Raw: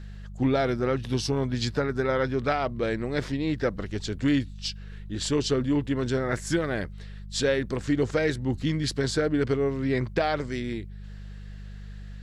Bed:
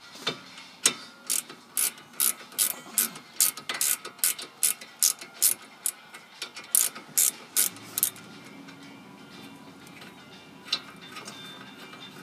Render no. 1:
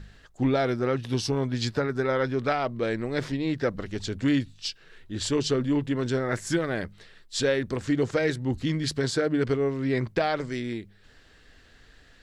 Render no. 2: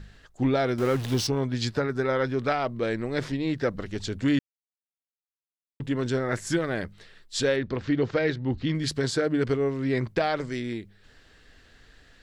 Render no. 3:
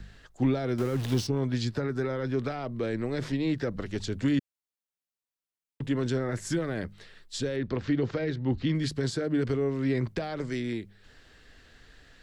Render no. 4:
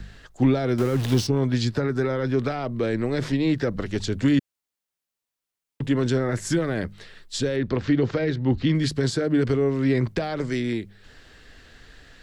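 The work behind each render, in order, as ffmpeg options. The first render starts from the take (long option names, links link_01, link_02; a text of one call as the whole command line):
ffmpeg -i in.wav -af "bandreject=frequency=50:width_type=h:width=4,bandreject=frequency=100:width_type=h:width=4,bandreject=frequency=150:width_type=h:width=4,bandreject=frequency=200:width_type=h:width=4" out.wav
ffmpeg -i in.wav -filter_complex "[0:a]asettb=1/sr,asplit=3[link_01][link_02][link_03];[link_01]atrim=end=0.784[link_04];[link_02]atrim=start=0.78:end=1.27,asetpts=PTS-STARTPTS,afade=type=in:duration=0.004:curve=qsin,afade=type=out:start_time=0.486:duration=0.004:curve=qsin,aeval=exprs='val(0)+0.5*0.0282*sgn(val(0))':channel_layout=same[link_05];[link_03]atrim=start=1.266[link_06];[link_04][link_05]acrossfade=duration=0.004:curve1=hsin:curve2=qsin[link_07];[link_07][link_06]acrossfade=duration=0.004:curve1=qsin:curve2=hsin,asettb=1/sr,asplit=3[link_08][link_09][link_10];[link_08]atrim=end=7.564[link_11];[link_09]atrim=start=7.56:end=8.75,asetpts=PTS-STARTPTS,afade=type=in:duration=0.004:curve=qsin,afade=type=out:start_time=1.186:duration=0.004:curve=qsin,lowpass=frequency=4700:width=0.5412,lowpass=frequency=4700:width=1.3066[link_12];[link_10]atrim=start=8.746[link_13];[link_11][link_12]acrossfade=duration=0.004:curve1=hsin:curve2=qsin[link_14];[link_14][link_13]acrossfade=duration=0.004:curve1=qsin:curve2=hsin,asplit=3[link_15][link_16][link_17];[link_15]atrim=end=4.39,asetpts=PTS-STARTPTS,afade=type=out:start_time=4.386:duration=0.004:curve=hsin[link_18];[link_16]atrim=start=4.39:end=5.8,asetpts=PTS-STARTPTS,volume=0[link_19];[link_17]atrim=start=5.8,asetpts=PTS-STARTPTS,afade=type=in:duration=0.004:curve=hsin[link_20];[link_18][link_19][link_20]concat=n=3:v=0:a=1" out.wav
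ffmpeg -i in.wav -filter_complex "[0:a]acrossover=split=200|4800[link_01][link_02][link_03];[link_02]alimiter=limit=-20dB:level=0:latency=1:release=36[link_04];[link_01][link_04][link_03]amix=inputs=3:normalize=0,acrossover=split=470[link_05][link_06];[link_06]acompressor=threshold=-35dB:ratio=6[link_07];[link_05][link_07]amix=inputs=2:normalize=0" out.wav
ffmpeg -i in.wav -af "volume=6dB" out.wav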